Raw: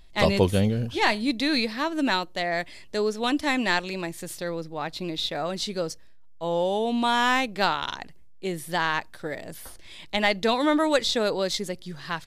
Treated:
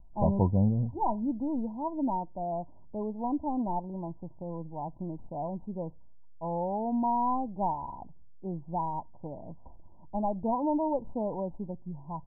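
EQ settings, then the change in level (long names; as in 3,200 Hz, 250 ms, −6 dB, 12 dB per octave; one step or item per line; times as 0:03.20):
Chebyshev low-pass filter 1,000 Hz, order 10
parametric band 440 Hz −12.5 dB 0.86 octaves
0.0 dB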